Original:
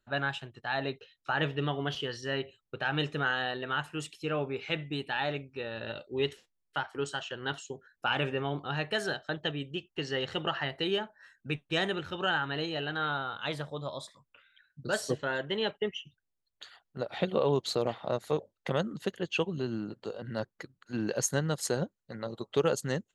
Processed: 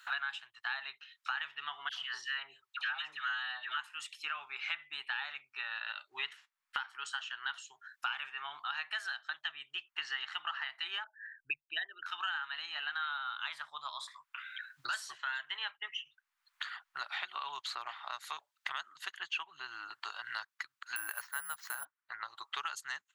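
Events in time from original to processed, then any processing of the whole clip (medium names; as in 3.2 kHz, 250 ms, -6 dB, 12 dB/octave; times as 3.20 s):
1.89–3.77 s: phase dispersion lows, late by 132 ms, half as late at 850 Hz
11.04–12.06 s: resonances exaggerated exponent 3
20.96–21.85 s: careless resampling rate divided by 4×, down filtered, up zero stuff
whole clip: inverse Chebyshev high-pass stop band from 550 Hz, stop band 40 dB; treble shelf 2.7 kHz -10 dB; three bands compressed up and down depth 100%; trim +1.5 dB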